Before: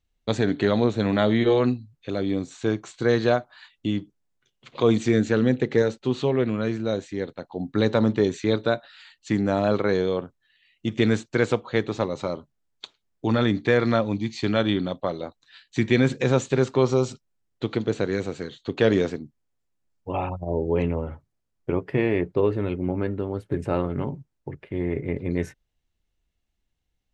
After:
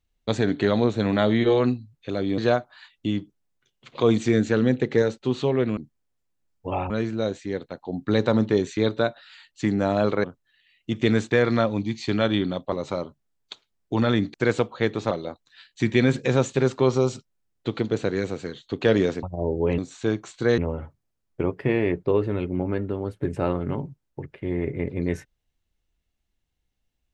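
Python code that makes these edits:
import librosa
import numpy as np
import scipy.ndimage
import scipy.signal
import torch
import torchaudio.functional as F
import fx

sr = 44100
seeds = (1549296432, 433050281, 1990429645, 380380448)

y = fx.edit(x, sr, fx.move(start_s=2.38, length_s=0.8, to_s=20.87),
    fx.cut(start_s=9.91, length_s=0.29),
    fx.swap(start_s=11.27, length_s=0.77, other_s=13.66, other_length_s=1.41),
    fx.move(start_s=19.19, length_s=1.13, to_s=6.57), tone=tone)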